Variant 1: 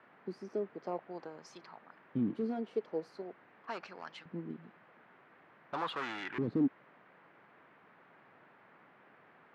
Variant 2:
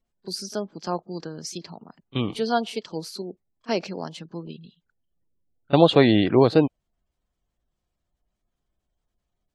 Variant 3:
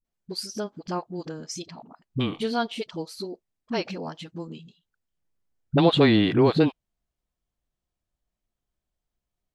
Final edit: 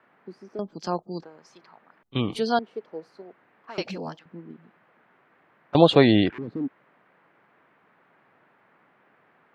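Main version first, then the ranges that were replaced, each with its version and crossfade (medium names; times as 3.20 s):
1
0.59–1.23 s: from 2
2.03–2.59 s: from 2
3.78–4.19 s: from 3
5.75–6.30 s: from 2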